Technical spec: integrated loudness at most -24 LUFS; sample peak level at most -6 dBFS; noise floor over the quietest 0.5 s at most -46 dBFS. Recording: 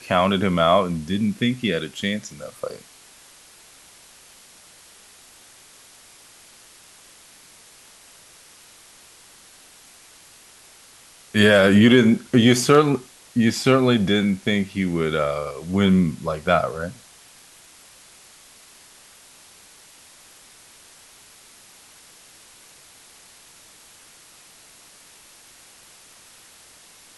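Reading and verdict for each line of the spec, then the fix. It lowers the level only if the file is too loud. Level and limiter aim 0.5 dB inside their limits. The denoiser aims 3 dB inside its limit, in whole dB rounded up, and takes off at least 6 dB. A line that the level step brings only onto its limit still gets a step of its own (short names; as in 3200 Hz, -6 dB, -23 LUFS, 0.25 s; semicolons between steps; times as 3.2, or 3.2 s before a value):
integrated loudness -19.5 LUFS: fail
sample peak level -2.5 dBFS: fail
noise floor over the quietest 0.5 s -49 dBFS: OK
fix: gain -5 dB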